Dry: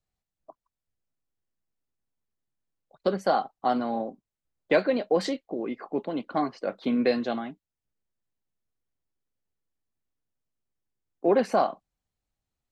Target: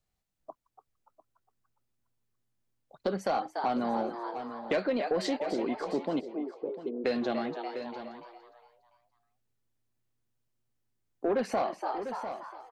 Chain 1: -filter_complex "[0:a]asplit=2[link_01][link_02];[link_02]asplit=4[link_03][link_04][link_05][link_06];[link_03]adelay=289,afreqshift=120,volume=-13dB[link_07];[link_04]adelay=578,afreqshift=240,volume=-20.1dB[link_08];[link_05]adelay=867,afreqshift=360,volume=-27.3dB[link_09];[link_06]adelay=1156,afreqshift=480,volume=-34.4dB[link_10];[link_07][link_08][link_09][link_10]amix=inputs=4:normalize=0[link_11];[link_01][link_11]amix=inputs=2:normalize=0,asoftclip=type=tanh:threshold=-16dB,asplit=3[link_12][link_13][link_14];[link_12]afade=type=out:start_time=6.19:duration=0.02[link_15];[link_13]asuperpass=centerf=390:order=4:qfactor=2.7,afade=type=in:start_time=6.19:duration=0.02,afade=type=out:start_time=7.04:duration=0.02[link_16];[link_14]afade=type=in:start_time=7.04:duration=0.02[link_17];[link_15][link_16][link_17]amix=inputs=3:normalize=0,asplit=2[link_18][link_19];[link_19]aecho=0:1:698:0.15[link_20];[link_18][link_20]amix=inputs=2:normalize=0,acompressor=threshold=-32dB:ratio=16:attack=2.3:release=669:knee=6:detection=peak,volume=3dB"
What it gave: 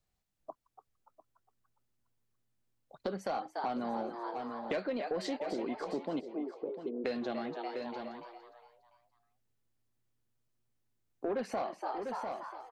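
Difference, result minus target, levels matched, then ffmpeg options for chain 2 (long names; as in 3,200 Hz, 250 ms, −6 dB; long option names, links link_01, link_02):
downward compressor: peak gain reduction +6 dB
-filter_complex "[0:a]asplit=2[link_01][link_02];[link_02]asplit=4[link_03][link_04][link_05][link_06];[link_03]adelay=289,afreqshift=120,volume=-13dB[link_07];[link_04]adelay=578,afreqshift=240,volume=-20.1dB[link_08];[link_05]adelay=867,afreqshift=360,volume=-27.3dB[link_09];[link_06]adelay=1156,afreqshift=480,volume=-34.4dB[link_10];[link_07][link_08][link_09][link_10]amix=inputs=4:normalize=0[link_11];[link_01][link_11]amix=inputs=2:normalize=0,asoftclip=type=tanh:threshold=-16dB,asplit=3[link_12][link_13][link_14];[link_12]afade=type=out:start_time=6.19:duration=0.02[link_15];[link_13]asuperpass=centerf=390:order=4:qfactor=2.7,afade=type=in:start_time=6.19:duration=0.02,afade=type=out:start_time=7.04:duration=0.02[link_16];[link_14]afade=type=in:start_time=7.04:duration=0.02[link_17];[link_15][link_16][link_17]amix=inputs=3:normalize=0,asplit=2[link_18][link_19];[link_19]aecho=0:1:698:0.15[link_20];[link_18][link_20]amix=inputs=2:normalize=0,acompressor=threshold=-25.5dB:ratio=16:attack=2.3:release=669:knee=6:detection=peak,volume=3dB"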